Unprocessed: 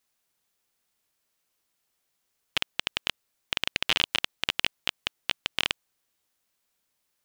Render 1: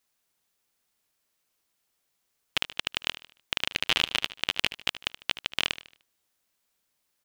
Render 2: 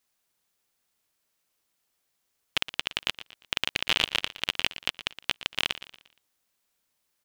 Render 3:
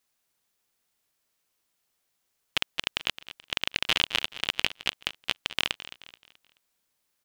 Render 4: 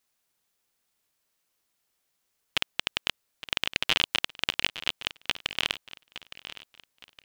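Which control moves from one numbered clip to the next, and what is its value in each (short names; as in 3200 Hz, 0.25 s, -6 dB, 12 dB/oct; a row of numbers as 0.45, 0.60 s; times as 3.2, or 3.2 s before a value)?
feedback echo, time: 75, 117, 215, 864 ms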